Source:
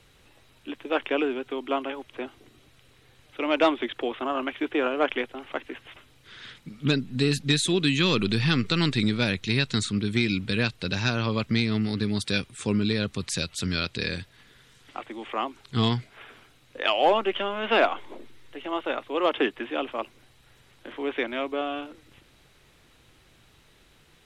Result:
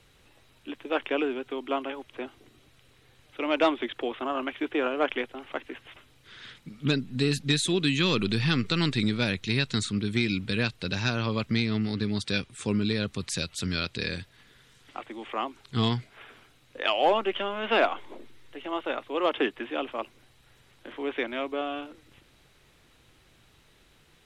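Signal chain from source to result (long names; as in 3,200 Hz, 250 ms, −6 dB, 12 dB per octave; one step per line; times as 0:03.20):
0:11.57–0:12.51: low-pass filter 7,900 Hz 12 dB per octave
level −2 dB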